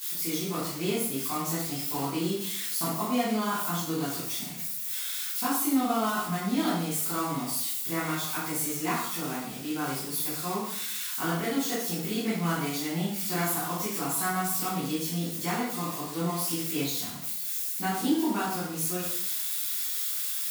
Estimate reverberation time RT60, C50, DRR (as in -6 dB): 0.65 s, 1.5 dB, -10.5 dB